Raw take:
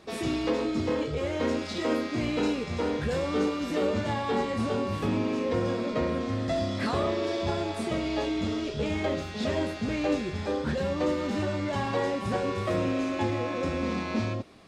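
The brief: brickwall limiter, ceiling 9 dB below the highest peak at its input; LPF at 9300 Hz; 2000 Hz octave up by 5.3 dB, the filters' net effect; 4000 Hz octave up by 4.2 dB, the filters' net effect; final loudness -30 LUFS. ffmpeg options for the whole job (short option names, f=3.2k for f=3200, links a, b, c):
-af "lowpass=9.3k,equalizer=f=2k:t=o:g=5.5,equalizer=f=4k:t=o:g=3.5,volume=2dB,alimiter=limit=-21.5dB:level=0:latency=1"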